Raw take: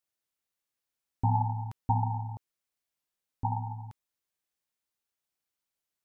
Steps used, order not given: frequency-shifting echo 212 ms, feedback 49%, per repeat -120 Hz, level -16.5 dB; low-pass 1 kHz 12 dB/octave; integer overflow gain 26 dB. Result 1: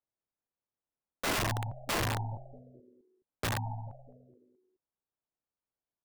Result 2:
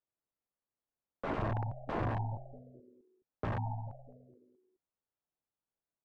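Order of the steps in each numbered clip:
frequency-shifting echo > low-pass > integer overflow; frequency-shifting echo > integer overflow > low-pass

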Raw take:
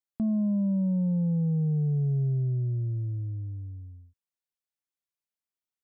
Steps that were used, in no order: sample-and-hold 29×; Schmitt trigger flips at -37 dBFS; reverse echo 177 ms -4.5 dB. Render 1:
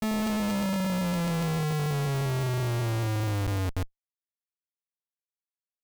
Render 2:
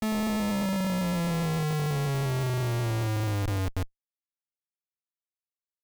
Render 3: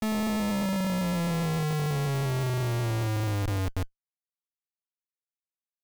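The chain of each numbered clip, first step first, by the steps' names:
sample-and-hold > reverse echo > Schmitt trigger; reverse echo > sample-and-hold > Schmitt trigger; reverse echo > Schmitt trigger > sample-and-hold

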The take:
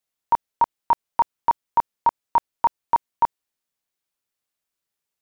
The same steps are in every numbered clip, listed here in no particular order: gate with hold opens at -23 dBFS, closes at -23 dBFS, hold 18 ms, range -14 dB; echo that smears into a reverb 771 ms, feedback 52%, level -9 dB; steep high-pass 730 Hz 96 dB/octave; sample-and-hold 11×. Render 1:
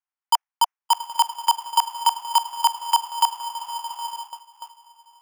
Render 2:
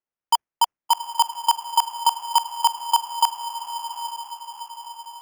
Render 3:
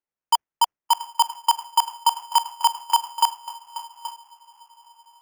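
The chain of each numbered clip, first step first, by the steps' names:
echo that smears into a reverb > sample-and-hold > steep high-pass > gate with hold; steep high-pass > gate with hold > echo that smears into a reverb > sample-and-hold; echo that smears into a reverb > gate with hold > steep high-pass > sample-and-hold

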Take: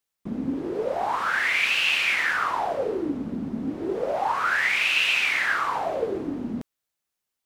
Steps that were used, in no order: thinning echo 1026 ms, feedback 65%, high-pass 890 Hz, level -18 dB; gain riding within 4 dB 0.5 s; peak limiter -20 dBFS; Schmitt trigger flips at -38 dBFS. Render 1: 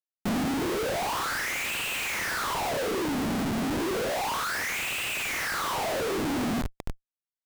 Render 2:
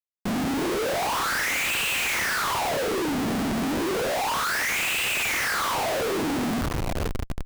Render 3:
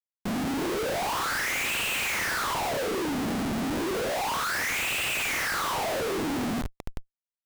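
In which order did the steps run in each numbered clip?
peak limiter > thinning echo > Schmitt trigger > gain riding; gain riding > thinning echo > Schmitt trigger > peak limiter; gain riding > peak limiter > thinning echo > Schmitt trigger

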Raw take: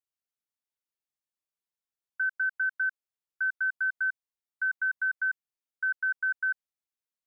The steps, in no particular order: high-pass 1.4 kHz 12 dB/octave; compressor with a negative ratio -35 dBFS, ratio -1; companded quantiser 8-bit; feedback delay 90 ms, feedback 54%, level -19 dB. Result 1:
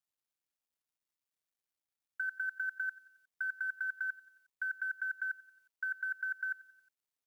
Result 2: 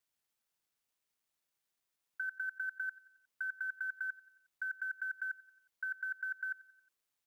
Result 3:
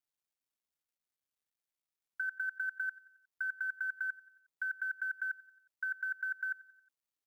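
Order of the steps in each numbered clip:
high-pass > compressor with a negative ratio > feedback delay > companded quantiser; compressor with a negative ratio > high-pass > companded quantiser > feedback delay; high-pass > compressor with a negative ratio > companded quantiser > feedback delay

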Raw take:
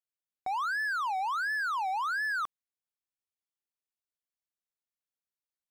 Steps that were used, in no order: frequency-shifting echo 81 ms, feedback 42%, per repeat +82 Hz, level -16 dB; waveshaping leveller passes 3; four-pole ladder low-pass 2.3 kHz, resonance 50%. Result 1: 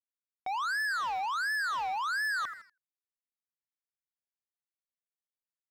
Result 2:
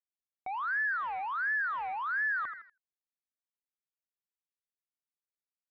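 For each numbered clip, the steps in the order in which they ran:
four-pole ladder low-pass > frequency-shifting echo > waveshaping leveller; frequency-shifting echo > waveshaping leveller > four-pole ladder low-pass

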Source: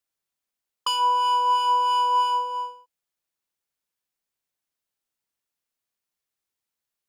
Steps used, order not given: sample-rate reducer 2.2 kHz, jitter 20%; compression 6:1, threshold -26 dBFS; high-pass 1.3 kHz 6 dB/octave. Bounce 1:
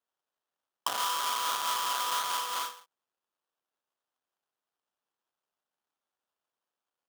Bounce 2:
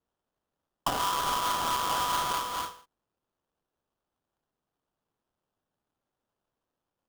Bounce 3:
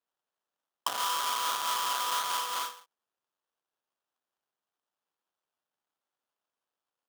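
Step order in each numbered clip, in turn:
sample-rate reducer > high-pass > compression; high-pass > compression > sample-rate reducer; compression > sample-rate reducer > high-pass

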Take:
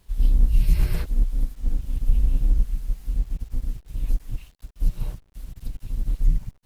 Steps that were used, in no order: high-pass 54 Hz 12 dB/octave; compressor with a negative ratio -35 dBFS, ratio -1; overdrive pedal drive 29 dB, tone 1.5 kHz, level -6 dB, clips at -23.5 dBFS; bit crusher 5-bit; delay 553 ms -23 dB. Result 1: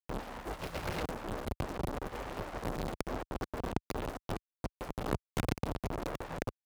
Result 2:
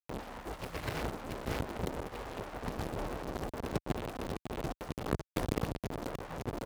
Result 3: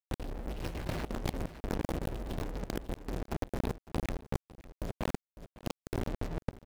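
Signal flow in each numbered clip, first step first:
delay > bit crusher > compressor with a negative ratio > high-pass > overdrive pedal; bit crusher > delay > compressor with a negative ratio > overdrive pedal > high-pass; high-pass > bit crusher > overdrive pedal > delay > compressor with a negative ratio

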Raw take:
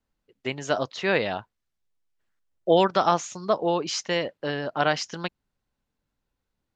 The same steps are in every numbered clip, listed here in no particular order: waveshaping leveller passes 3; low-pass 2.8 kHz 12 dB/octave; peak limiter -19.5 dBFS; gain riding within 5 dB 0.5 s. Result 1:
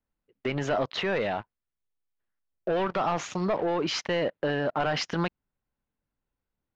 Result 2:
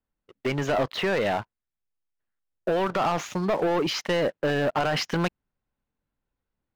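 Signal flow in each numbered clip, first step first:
waveshaping leveller > low-pass > peak limiter > gain riding; peak limiter > low-pass > gain riding > waveshaping leveller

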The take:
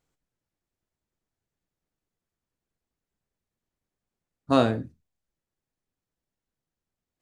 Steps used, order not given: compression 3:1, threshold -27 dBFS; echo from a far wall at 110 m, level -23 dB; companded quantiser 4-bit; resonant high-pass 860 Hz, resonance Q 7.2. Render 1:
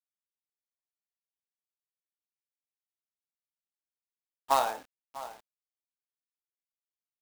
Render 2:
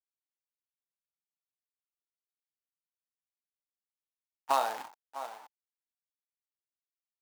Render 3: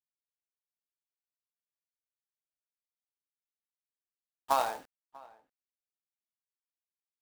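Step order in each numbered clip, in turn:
echo from a far wall > compression > resonant high-pass > companded quantiser; echo from a far wall > companded quantiser > resonant high-pass > compression; resonant high-pass > companded quantiser > compression > echo from a far wall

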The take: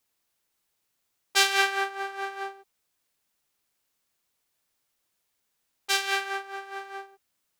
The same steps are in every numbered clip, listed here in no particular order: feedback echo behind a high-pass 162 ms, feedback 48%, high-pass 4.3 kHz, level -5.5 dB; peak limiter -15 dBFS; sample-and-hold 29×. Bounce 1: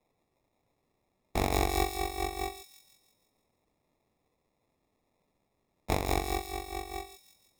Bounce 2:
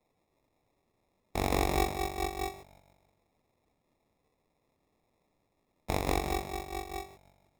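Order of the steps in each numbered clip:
sample-and-hold > feedback echo behind a high-pass > peak limiter; feedback echo behind a high-pass > peak limiter > sample-and-hold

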